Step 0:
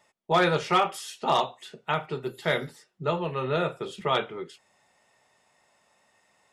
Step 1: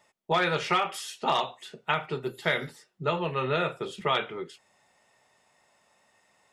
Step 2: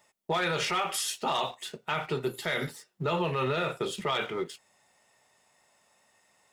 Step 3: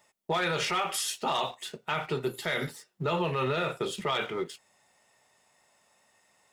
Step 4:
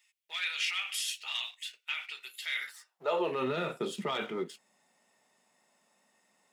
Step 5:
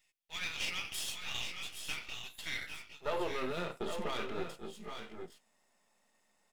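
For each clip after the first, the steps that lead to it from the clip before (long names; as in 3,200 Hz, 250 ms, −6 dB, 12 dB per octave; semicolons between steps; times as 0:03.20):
dynamic equaliser 2,300 Hz, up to +7 dB, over −39 dBFS, Q 0.74; downward compressor 4 to 1, threshold −22 dBFS, peak gain reduction 7.5 dB
high-shelf EQ 6,800 Hz +8.5 dB; leveller curve on the samples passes 1; brickwall limiter −20.5 dBFS, peak gain reduction 9.5 dB
no processing that can be heard
high-pass filter sweep 2,500 Hz → 210 Hz, 0:02.53–0:03.47; level −5 dB
gain on one half-wave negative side −12 dB; on a send: multi-tap delay 783/806/824 ms −18/−11/−9 dB; on the sum: level −1.5 dB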